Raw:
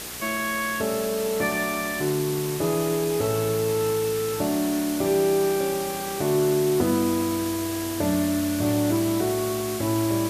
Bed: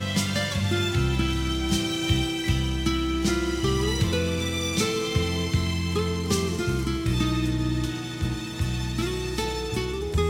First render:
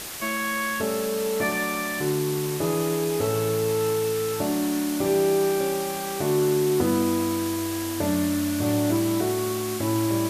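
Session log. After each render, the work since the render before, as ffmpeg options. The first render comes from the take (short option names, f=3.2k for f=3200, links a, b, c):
-af "bandreject=f=60:t=h:w=4,bandreject=f=120:t=h:w=4,bandreject=f=180:t=h:w=4,bandreject=f=240:t=h:w=4,bandreject=f=300:t=h:w=4,bandreject=f=360:t=h:w=4,bandreject=f=420:t=h:w=4,bandreject=f=480:t=h:w=4,bandreject=f=540:t=h:w=4,bandreject=f=600:t=h:w=4,bandreject=f=660:t=h:w=4"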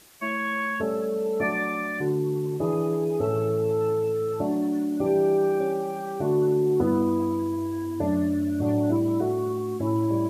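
-af "afftdn=nr=18:nf=-29"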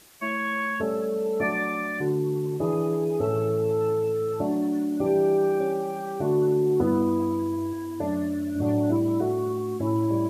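-filter_complex "[0:a]asettb=1/sr,asplit=3[a][b][c];[a]atrim=end=7.734[d];[b]atrim=start=7.73:end=8.56,asetpts=PTS-STARTPTS,afade=t=in:d=0.004:c=qsin,afade=t=out:st=0.826:d=0.004:c=qsin,lowshelf=f=280:g=-6.5[e];[c]atrim=start=8.556[f];[d][e]acrossfade=d=0.004:c1=hsin:c2=qsin[g];[g][f]acrossfade=d=0.004:c1=qsin:c2=hsin"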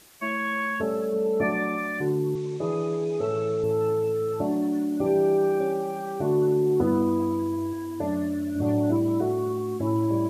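-filter_complex "[0:a]asettb=1/sr,asplit=3[a][b][c];[a]atrim=end=1.134[d];[b]atrim=start=1.13:end=1.78,asetpts=PTS-STARTPTS,afade=t=in:d=0.004:c=qsin,afade=t=out:st=0.646:d=0.004:c=qsin,tiltshelf=f=970:g=3[e];[c]atrim=start=1.776[f];[d][e]acrossfade=d=0.004:c1=hsin:c2=qsin[g];[g][f]acrossfade=d=0.004:c1=qsin:c2=hsin,asettb=1/sr,asplit=3[h][i][j];[h]atrim=end=2.354[k];[i]atrim=start=2.35:end=3.64,asetpts=PTS-STARTPTS,afade=t=in:d=0.004:c=qsin,afade=t=out:st=1.286:d=0.004:c=qsin,highpass=150,equalizer=f=280:t=q:w=4:g=-9,equalizer=f=810:t=q:w=4:g=-6,equalizer=f=2.3k:t=q:w=4:g=6,equalizer=f=3.7k:t=q:w=4:g=6,equalizer=f=6.1k:t=q:w=4:g=4,lowpass=f=8k:w=0.5412,lowpass=f=8k:w=1.3066[l];[j]atrim=start=3.636[m];[k][l]acrossfade=d=0.004:c1=hsin:c2=qsin[n];[n][m]acrossfade=d=0.004:c1=qsin:c2=hsin"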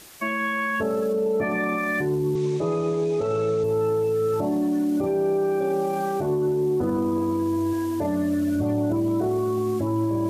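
-af "acontrast=76,alimiter=limit=-17.5dB:level=0:latency=1:release=15"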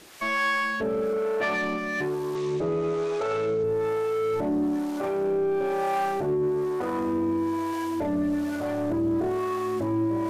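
-filter_complex "[0:a]asplit=2[a][b];[b]highpass=f=720:p=1,volume=15dB,asoftclip=type=tanh:threshold=-17dB[c];[a][c]amix=inputs=2:normalize=0,lowpass=f=3.6k:p=1,volume=-6dB,acrossover=split=480[d][e];[d]aeval=exprs='val(0)*(1-0.7/2+0.7/2*cos(2*PI*1.1*n/s))':c=same[f];[e]aeval=exprs='val(0)*(1-0.7/2-0.7/2*cos(2*PI*1.1*n/s))':c=same[g];[f][g]amix=inputs=2:normalize=0"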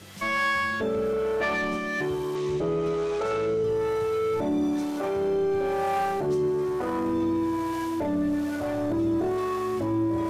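-filter_complex "[1:a]volume=-20.5dB[a];[0:a][a]amix=inputs=2:normalize=0"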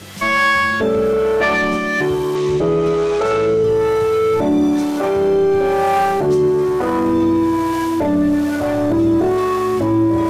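-af "volume=10.5dB"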